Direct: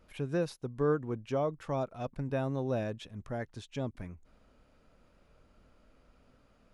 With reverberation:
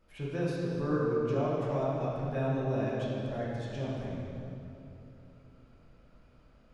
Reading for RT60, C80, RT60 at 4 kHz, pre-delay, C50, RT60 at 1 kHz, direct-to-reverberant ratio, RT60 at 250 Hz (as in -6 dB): 3.0 s, -1.0 dB, 2.1 s, 3 ms, -3.0 dB, 2.7 s, -7.5 dB, 3.8 s